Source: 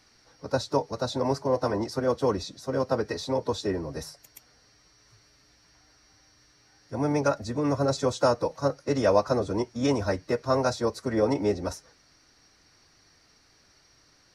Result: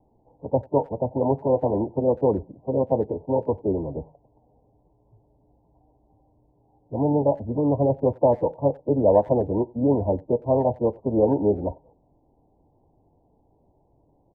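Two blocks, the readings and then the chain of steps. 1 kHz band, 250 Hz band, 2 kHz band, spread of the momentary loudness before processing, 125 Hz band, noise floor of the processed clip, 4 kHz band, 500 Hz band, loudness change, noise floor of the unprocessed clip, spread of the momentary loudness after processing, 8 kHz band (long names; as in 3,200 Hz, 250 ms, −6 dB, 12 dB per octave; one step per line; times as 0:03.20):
+1.5 dB, +4.5 dB, below −25 dB, 8 LU, +4.5 dB, −64 dBFS, below −35 dB, +4.5 dB, +4.0 dB, −62 dBFS, 7 LU, below −40 dB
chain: Butterworth low-pass 940 Hz 96 dB per octave
far-end echo of a speakerphone 90 ms, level −25 dB
level +4.5 dB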